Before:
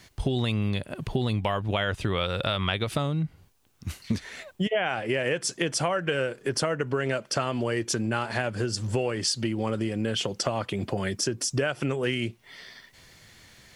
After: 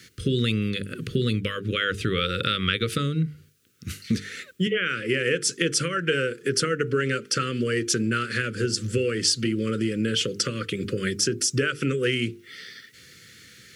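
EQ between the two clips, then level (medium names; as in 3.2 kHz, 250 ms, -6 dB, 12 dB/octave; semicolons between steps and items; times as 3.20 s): high-pass 110 Hz; elliptic band-stop 490–1300 Hz, stop band 50 dB; hum notches 50/100/150/200/250/300/350/400/450 Hz; +5.0 dB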